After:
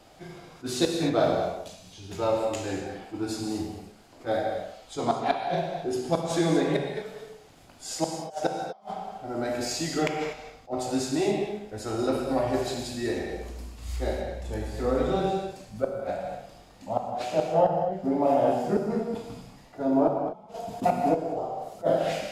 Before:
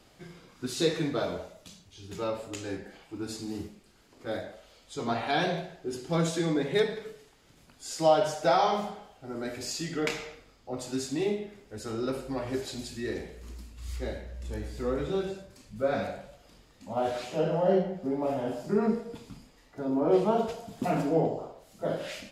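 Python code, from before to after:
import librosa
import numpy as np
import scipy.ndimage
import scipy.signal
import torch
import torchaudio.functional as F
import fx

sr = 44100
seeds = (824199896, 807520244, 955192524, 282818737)

y = fx.peak_eq(x, sr, hz=720.0, db=8.5, octaves=0.66)
y = fx.gate_flip(y, sr, shuts_db=-14.0, range_db=-39)
y = fx.rev_gated(y, sr, seeds[0], gate_ms=270, shape='flat', drr_db=2.0)
y = fx.attack_slew(y, sr, db_per_s=370.0)
y = F.gain(torch.from_numpy(y), 2.0).numpy()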